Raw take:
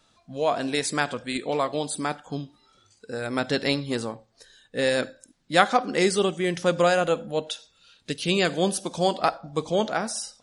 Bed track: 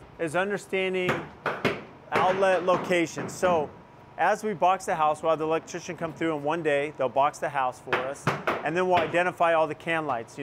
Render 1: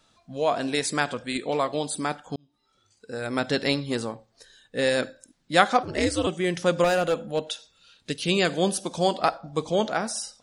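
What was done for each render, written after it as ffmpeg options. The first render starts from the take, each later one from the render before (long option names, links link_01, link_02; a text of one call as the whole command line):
ffmpeg -i in.wav -filter_complex "[0:a]asettb=1/sr,asplit=3[link_01][link_02][link_03];[link_01]atrim=end=5.834[link_04];[link_02]atrim=start=5.83:end=6.27,asetpts=PTS-STARTPTS,afade=type=in:duration=0.004:curve=qsin,afade=type=out:start_time=0.436:duration=0.004:curve=qsin,aeval=exprs='val(0)*sin(2*PI*110*n/s)':channel_layout=same[link_05];[link_03]atrim=start=6.266[link_06];[link_04][link_05]acrossfade=duration=0.004:curve1=hsin:curve2=qsin[link_07];[link_07][link_06]acrossfade=duration=0.004:curve1=qsin:curve2=hsin,asettb=1/sr,asplit=3[link_08][link_09][link_10];[link_08]atrim=end=6.844[link_11];[link_09]atrim=start=6.84:end=7.44,asetpts=PTS-STARTPTS,afade=type=in:duration=0.004:curve=qsin,afade=type=out:start_time=0.596:duration=0.004:curve=qsin,asoftclip=type=hard:threshold=-18dB[link_12];[link_10]atrim=start=7.436[link_13];[link_11][link_12]acrossfade=duration=0.004:curve1=hsin:curve2=qsin[link_14];[link_14][link_13]acrossfade=duration=0.004:curve1=qsin:curve2=hsin,asplit=2[link_15][link_16];[link_15]atrim=end=2.36,asetpts=PTS-STARTPTS,afade=type=out:start_time=2.356:duration=0.004:curve=hsin[link_17];[link_16]atrim=start=2.36,asetpts=PTS-STARTPTS,afade=type=in:duration=0.93[link_18];[link_17][link_18]concat=n=2:v=0:a=1" out.wav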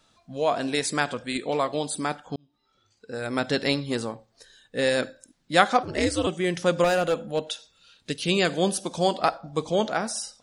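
ffmpeg -i in.wav -filter_complex "[0:a]asettb=1/sr,asplit=3[link_01][link_02][link_03];[link_01]atrim=end=2.244[link_04];[link_02]atrim=start=2.24:end=3.14,asetpts=PTS-STARTPTS,afade=type=in:duration=0.004:curve=qsin,afade=type=out:start_time=0.896:duration=0.004:curve=qsin,lowpass=5500[link_05];[link_03]atrim=start=3.136[link_06];[link_04][link_05]acrossfade=duration=0.004:curve1=hsin:curve2=qsin[link_07];[link_07][link_06]acrossfade=duration=0.004:curve1=qsin:curve2=hsin" out.wav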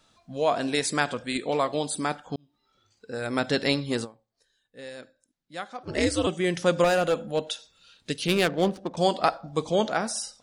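ffmpeg -i in.wav -filter_complex "[0:a]asettb=1/sr,asplit=3[link_01][link_02][link_03];[link_01]atrim=end=8.274[link_04];[link_02]atrim=start=8.27:end=8.97,asetpts=PTS-STARTPTS,afade=type=in:duration=0.004:curve=qsin,afade=type=out:start_time=0.696:duration=0.004:curve=qsin,adynamicsmooth=sensitivity=2.5:basefreq=850[link_05];[link_03]atrim=start=8.966[link_06];[link_04][link_05]acrossfade=duration=0.004:curve1=hsin:curve2=qsin[link_07];[link_07][link_06]acrossfade=duration=0.004:curve1=qsin:curve2=hsin,asplit=3[link_08][link_09][link_10];[link_08]atrim=end=4.2,asetpts=PTS-STARTPTS,afade=type=out:start_time=4.04:duration=0.16:curve=exp:silence=0.133352[link_11];[link_09]atrim=start=4.2:end=5.72,asetpts=PTS-STARTPTS,volume=-17.5dB[link_12];[link_10]atrim=start=5.72,asetpts=PTS-STARTPTS,afade=type=in:duration=0.16:curve=exp:silence=0.133352[link_13];[link_11][link_12][link_13]concat=n=3:v=0:a=1" out.wav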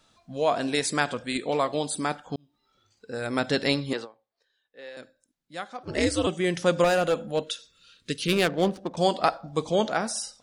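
ffmpeg -i in.wav -filter_complex "[0:a]asettb=1/sr,asplit=3[link_01][link_02][link_03];[link_01]atrim=end=3.934[link_04];[link_02]atrim=start=3.93:end=4.97,asetpts=PTS-STARTPTS,afade=type=in:duration=0.004:curve=qsin,afade=type=out:start_time=1.036:duration=0.004:curve=qsin,acrossover=split=340 4800:gain=0.141 1 0.0631[link_05][link_06][link_07];[link_05][link_06][link_07]amix=inputs=3:normalize=0[link_08];[link_03]atrim=start=4.966[link_09];[link_04][link_08]acrossfade=duration=0.004:curve1=hsin:curve2=qsin[link_10];[link_10][link_09]acrossfade=duration=0.004:curve1=qsin:curve2=hsin,asettb=1/sr,asplit=3[link_11][link_12][link_13];[link_11]atrim=end=7.434[link_14];[link_12]atrim=start=7.43:end=8.33,asetpts=PTS-STARTPTS,afade=type=in:duration=0.004:curve=qsin,afade=type=out:start_time=0.896:duration=0.004:curve=qsin,asuperstop=centerf=770:order=4:qfactor=1.5[link_15];[link_13]atrim=start=8.326[link_16];[link_14][link_15]acrossfade=duration=0.004:curve1=hsin:curve2=qsin[link_17];[link_17][link_16]acrossfade=duration=0.004:curve1=qsin:curve2=hsin" out.wav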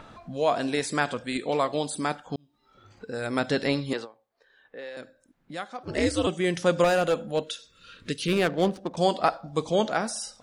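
ffmpeg -i in.wav -filter_complex "[0:a]acrossover=split=2300[link_01][link_02];[link_01]acompressor=mode=upward:threshold=-33dB:ratio=2.5[link_03];[link_02]alimiter=level_in=0.5dB:limit=-24dB:level=0:latency=1:release=27,volume=-0.5dB[link_04];[link_03][link_04]amix=inputs=2:normalize=0" out.wav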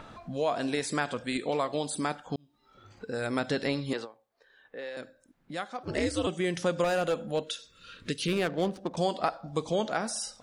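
ffmpeg -i in.wav -af "acompressor=threshold=-28dB:ratio=2" out.wav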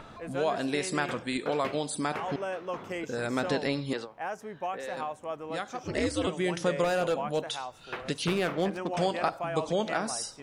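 ffmpeg -i in.wav -i bed.wav -filter_complex "[1:a]volume=-12dB[link_01];[0:a][link_01]amix=inputs=2:normalize=0" out.wav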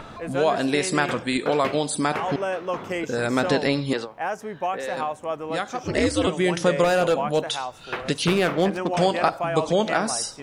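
ffmpeg -i in.wav -af "volume=7.5dB" out.wav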